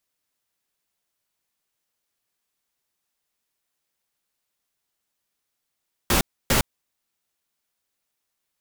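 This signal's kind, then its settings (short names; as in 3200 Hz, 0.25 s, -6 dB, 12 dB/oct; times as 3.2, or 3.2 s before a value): noise bursts pink, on 0.11 s, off 0.29 s, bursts 2, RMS -19 dBFS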